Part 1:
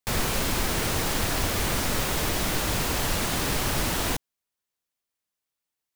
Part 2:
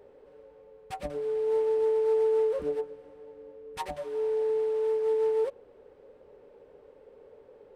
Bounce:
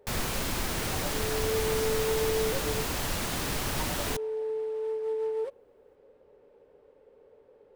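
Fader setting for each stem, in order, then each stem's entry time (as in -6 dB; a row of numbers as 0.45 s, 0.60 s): -5.0 dB, -4.5 dB; 0.00 s, 0.00 s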